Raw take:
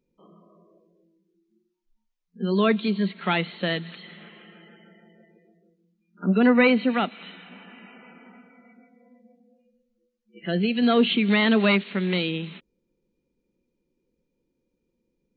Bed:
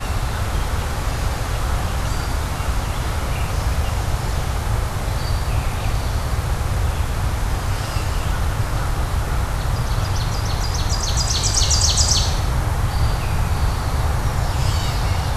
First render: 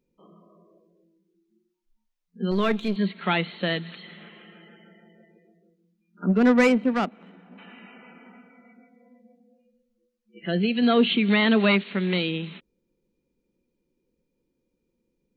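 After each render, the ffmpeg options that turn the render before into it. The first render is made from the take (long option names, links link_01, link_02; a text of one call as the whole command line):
ffmpeg -i in.wav -filter_complex "[0:a]asettb=1/sr,asplit=3[link_01][link_02][link_03];[link_01]atrim=end=2.514[link_04];[link_02]atrim=start=2.51:end=2.96,asetpts=PTS-STARTPTS,afade=type=in:duration=0.004:curve=qsin,afade=type=out:start_time=0.446:duration=0.004:curve=qsin,aeval=exprs='if(lt(val(0),0),0.447*val(0),val(0))':channel_layout=same[link_05];[link_03]atrim=start=2.956[link_06];[link_04][link_05]acrossfade=duration=0.004:curve1=hsin:curve2=qsin[link_07];[link_07][link_06]acrossfade=duration=0.004:curve1=qsin:curve2=hsin,asplit=3[link_08][link_09][link_10];[link_08]afade=type=out:start_time=6.28:duration=0.02[link_11];[link_09]adynamicsmooth=sensitivity=1:basefreq=910,afade=type=in:start_time=6.28:duration=0.02,afade=type=out:start_time=7.57:duration=0.02[link_12];[link_10]afade=type=in:start_time=7.57:duration=0.02[link_13];[link_11][link_12][link_13]amix=inputs=3:normalize=0" out.wav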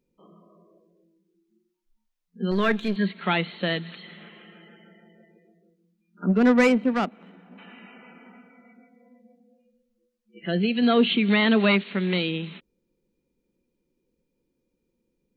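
ffmpeg -i in.wav -filter_complex "[0:a]asettb=1/sr,asplit=3[link_01][link_02][link_03];[link_01]atrim=end=2.494[link_04];[link_02]atrim=start=2.49:end=3.11,asetpts=PTS-STARTPTS,afade=type=in:duration=0.004:curve=qsin,afade=type=out:start_time=0.616:duration=0.004:curve=qsin,equalizer=frequency=1700:width_type=o:width=0.28:gain=9.5[link_05];[link_03]atrim=start=3.106[link_06];[link_04][link_05]acrossfade=duration=0.004:curve1=hsin:curve2=qsin[link_07];[link_07][link_06]acrossfade=duration=0.004:curve1=qsin:curve2=hsin" out.wav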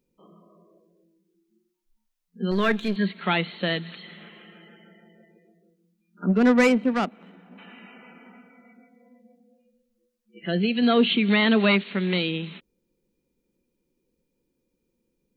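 ffmpeg -i in.wav -af "highshelf=frequency=5600:gain=4.5" out.wav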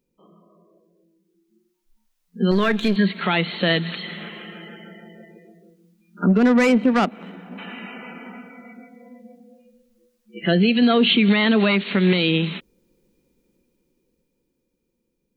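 ffmpeg -i in.wav -af "alimiter=limit=-20dB:level=0:latency=1:release=142,dynaudnorm=framelen=180:gausssize=21:maxgain=11dB" out.wav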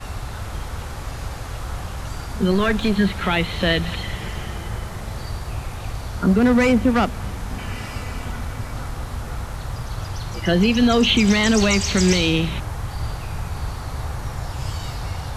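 ffmpeg -i in.wav -i bed.wav -filter_complex "[1:a]volume=-8dB[link_01];[0:a][link_01]amix=inputs=2:normalize=0" out.wav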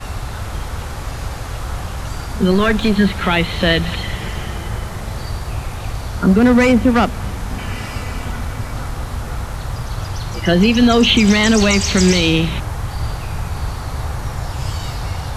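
ffmpeg -i in.wav -af "volume=4.5dB,alimiter=limit=-3dB:level=0:latency=1" out.wav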